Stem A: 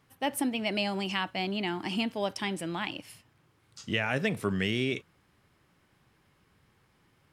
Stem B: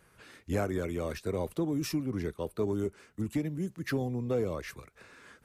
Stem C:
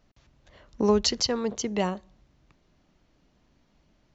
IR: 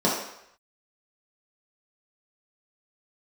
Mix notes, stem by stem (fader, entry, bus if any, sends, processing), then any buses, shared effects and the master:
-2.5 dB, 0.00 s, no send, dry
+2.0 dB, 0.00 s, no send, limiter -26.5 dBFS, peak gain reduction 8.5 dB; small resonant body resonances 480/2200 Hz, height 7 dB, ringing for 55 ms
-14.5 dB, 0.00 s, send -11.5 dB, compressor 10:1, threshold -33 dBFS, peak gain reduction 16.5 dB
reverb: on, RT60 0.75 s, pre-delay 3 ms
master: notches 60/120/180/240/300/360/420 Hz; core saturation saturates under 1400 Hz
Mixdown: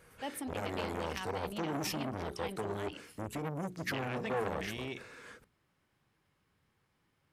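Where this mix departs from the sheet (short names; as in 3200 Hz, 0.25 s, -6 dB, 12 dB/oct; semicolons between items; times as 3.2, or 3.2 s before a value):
stem A -2.5 dB -> -9.0 dB; stem C -14.5 dB -> -24.5 dB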